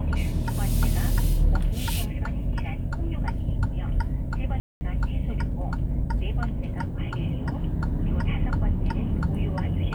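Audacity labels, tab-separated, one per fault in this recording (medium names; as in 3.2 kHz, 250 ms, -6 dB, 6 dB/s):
4.600000	4.810000	dropout 210 ms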